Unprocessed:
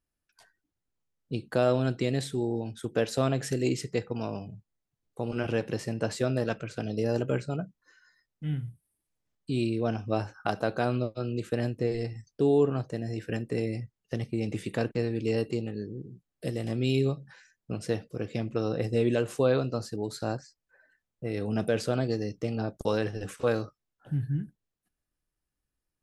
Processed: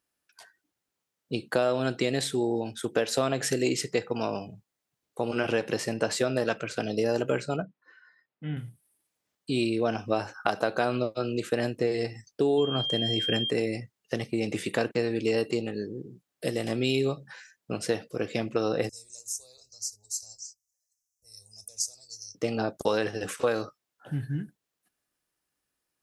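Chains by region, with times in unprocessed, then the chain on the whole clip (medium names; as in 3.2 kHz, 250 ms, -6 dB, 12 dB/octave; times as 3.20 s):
7.62–8.57 s: high-pass 110 Hz + distance through air 350 m
12.57–13.49 s: bass shelf 230 Hz +6.5 dB + whistle 3.2 kHz -35 dBFS
18.89–22.35 s: inverse Chebyshev band-stop 130–3300 Hz + peaking EQ 5.9 kHz +12.5 dB 0.65 oct + hum notches 60/120/180/240/300/360/420 Hz
whole clip: high-pass 440 Hz 6 dB/octave; compression, threshold -29 dBFS; trim +8 dB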